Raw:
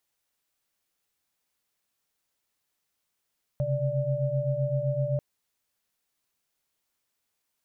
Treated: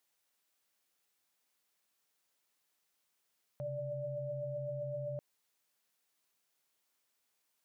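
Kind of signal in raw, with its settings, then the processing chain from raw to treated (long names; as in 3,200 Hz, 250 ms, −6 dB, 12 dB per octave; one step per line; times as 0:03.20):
held notes C3/C#3/D5 sine, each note −29 dBFS 1.59 s
high-pass filter 230 Hz 6 dB per octave
brickwall limiter −34 dBFS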